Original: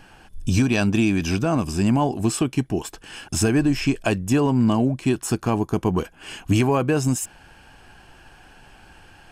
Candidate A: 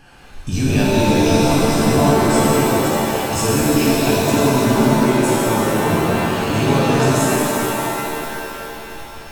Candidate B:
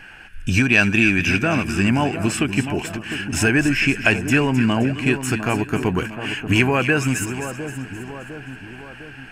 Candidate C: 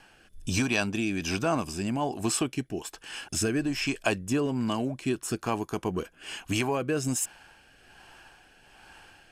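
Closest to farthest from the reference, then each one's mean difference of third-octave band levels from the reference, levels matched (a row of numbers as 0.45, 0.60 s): C, B, A; 3.5, 6.5, 13.5 dB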